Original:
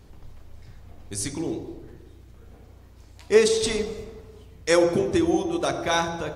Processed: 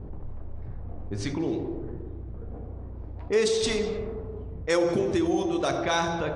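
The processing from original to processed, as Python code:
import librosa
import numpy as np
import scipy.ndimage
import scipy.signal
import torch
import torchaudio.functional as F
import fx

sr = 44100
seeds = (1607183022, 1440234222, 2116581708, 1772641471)

y = fx.env_lowpass(x, sr, base_hz=630.0, full_db=-20.0)
y = scipy.signal.sosfilt(scipy.signal.butter(2, 7600.0, 'lowpass', fs=sr, output='sos'), y)
y = fx.env_flatten(y, sr, amount_pct=50)
y = y * librosa.db_to_amplitude(-7.5)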